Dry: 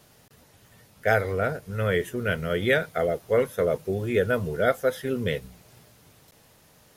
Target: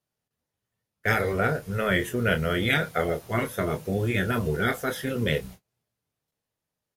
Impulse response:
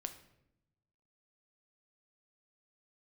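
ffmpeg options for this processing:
-filter_complex "[0:a]afftfilt=real='re*lt(hypot(re,im),0.355)':imag='im*lt(hypot(re,im),0.355)':win_size=1024:overlap=0.75,agate=range=-33dB:threshold=-45dB:ratio=16:detection=peak,asplit=2[link_01][link_02];[link_02]adelay=26,volume=-8.5dB[link_03];[link_01][link_03]amix=inputs=2:normalize=0,volume=3.5dB"

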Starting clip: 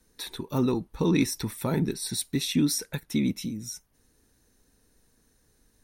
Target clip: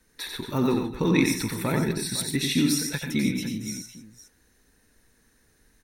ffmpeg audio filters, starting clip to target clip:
ffmpeg -i in.wav -af "equalizer=frequency=1900:width_type=o:width=1.1:gain=7.5,aecho=1:1:90|126|146|250|506:0.596|0.224|0.188|0.168|0.211" out.wav

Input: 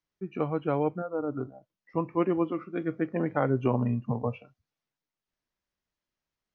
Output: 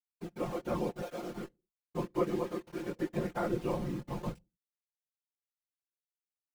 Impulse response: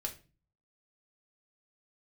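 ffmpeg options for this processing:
-filter_complex "[0:a]aeval=exprs='val(0)*gte(abs(val(0)),0.0168)':channel_layout=same,flanger=delay=17.5:depth=4.6:speed=0.92,asplit=2[link_01][link_02];[1:a]atrim=start_sample=2205,afade=type=out:start_time=0.36:duration=0.01,atrim=end_sample=16317,asetrate=57330,aresample=44100[link_03];[link_02][link_03]afir=irnorm=-1:irlink=0,volume=-17dB[link_04];[link_01][link_04]amix=inputs=2:normalize=0,afftfilt=real='hypot(re,im)*cos(2*PI*random(0))':imag='hypot(re,im)*sin(2*PI*random(1))':win_size=512:overlap=0.75,aecho=1:1:5.7:0.7"

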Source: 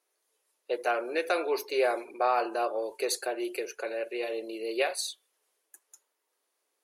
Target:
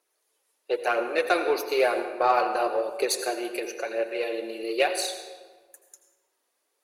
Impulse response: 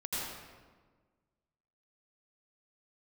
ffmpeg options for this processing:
-filter_complex "[0:a]aphaser=in_gain=1:out_gain=1:delay=4.4:decay=0.42:speed=1:type=triangular,asplit=2[link_01][link_02];[1:a]atrim=start_sample=2205[link_03];[link_02][link_03]afir=irnorm=-1:irlink=0,volume=-10dB[link_04];[link_01][link_04]amix=inputs=2:normalize=0,aeval=exprs='0.266*(cos(1*acos(clip(val(0)/0.266,-1,1)))-cos(1*PI/2))+0.00596*(cos(7*acos(clip(val(0)/0.266,-1,1)))-cos(7*PI/2))':channel_layout=same,volume=2dB"

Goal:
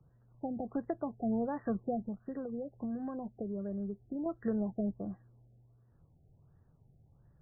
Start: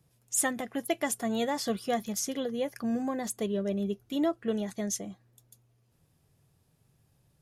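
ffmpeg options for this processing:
ffmpeg -i in.wav -filter_complex "[0:a]acrossover=split=210[link_01][link_02];[link_02]acompressor=threshold=-35dB:ratio=3[link_03];[link_01][link_03]amix=inputs=2:normalize=0,lowshelf=frequency=95:gain=10.5,asettb=1/sr,asplit=3[link_04][link_05][link_06];[link_04]atrim=end=2.084[link_07];[link_05]atrim=start=2.08:end=4.26,asetpts=PTS-STARTPTS,afade=type=in:duration=0.004:curve=qsin,afade=type=out:start_time=2.176:duration=0.004:curve=qsin,acompressor=threshold=-38dB:ratio=2.5[link_08];[link_06]atrim=start=4.256[link_09];[link_07][link_08]acrossfade=duration=0.004:curve1=hsin:curve2=qsin[link_10];[link_10][link_09]acrossfade=duration=0.004:curve1=qsin:curve2=hsin,afftfilt=real='re*lt(b*sr/1024,790*pow(2000/790,0.5+0.5*sin(2*PI*1.4*pts/sr)))':imag='im*lt(b*sr/1024,790*pow(2000/790,0.5+0.5*sin(2*PI*1.4*pts/sr)))':win_size=1024:overlap=0.75" out.wav

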